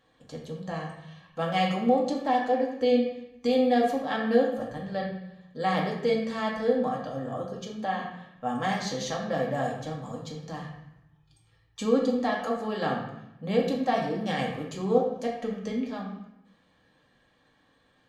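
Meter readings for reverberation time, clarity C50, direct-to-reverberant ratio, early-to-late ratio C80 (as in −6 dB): 0.80 s, 4.0 dB, −2.5 dB, 7.0 dB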